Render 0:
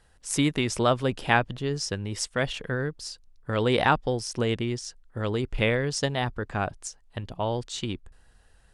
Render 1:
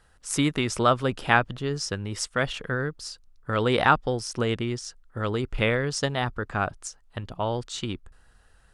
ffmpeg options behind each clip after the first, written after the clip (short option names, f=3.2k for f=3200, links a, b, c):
-af "equalizer=f=1.3k:t=o:w=0.49:g=6.5"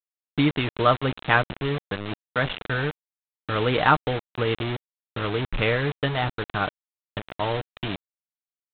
-af "aecho=1:1:6.6:0.42,aresample=8000,acrusher=bits=4:mix=0:aa=0.000001,aresample=44100"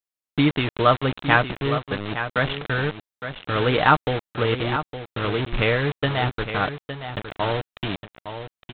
-af "aecho=1:1:862:0.316,volume=2dB"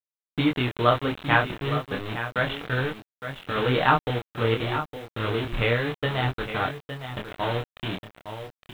-af "flanger=delay=22.5:depth=4.8:speed=0.3,acrusher=bits=8:mix=0:aa=0.000001"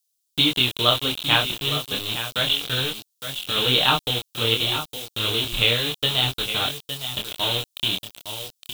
-af "aexciter=amount=14:drive=3.5:freq=2.9k,volume=-2.5dB"